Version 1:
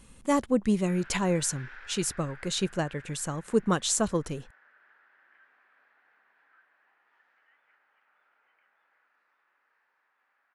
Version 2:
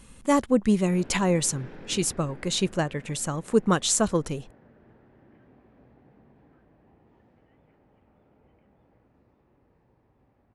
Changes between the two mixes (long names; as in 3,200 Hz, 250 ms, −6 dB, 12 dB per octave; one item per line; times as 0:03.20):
speech +3.5 dB
background: remove high-pass with resonance 1,500 Hz, resonance Q 3.3